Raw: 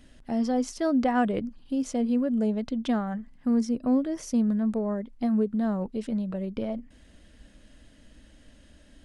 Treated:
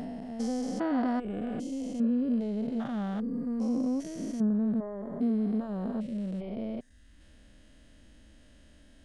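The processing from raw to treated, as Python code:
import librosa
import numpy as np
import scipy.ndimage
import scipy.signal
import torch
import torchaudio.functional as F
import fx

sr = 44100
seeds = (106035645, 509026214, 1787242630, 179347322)

y = fx.spec_steps(x, sr, hold_ms=400)
y = fx.dereverb_blind(y, sr, rt60_s=0.81)
y = F.gain(torch.from_numpy(y), 1.5).numpy()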